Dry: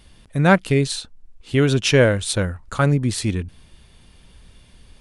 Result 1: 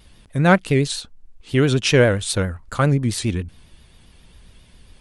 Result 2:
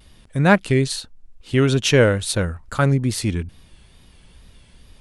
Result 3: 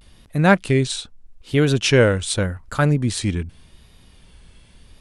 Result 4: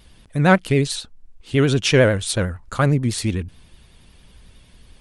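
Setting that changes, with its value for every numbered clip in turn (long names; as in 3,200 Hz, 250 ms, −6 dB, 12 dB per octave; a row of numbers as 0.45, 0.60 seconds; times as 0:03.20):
pitch vibrato, speed: 7.4, 2.3, 0.83, 11 Hertz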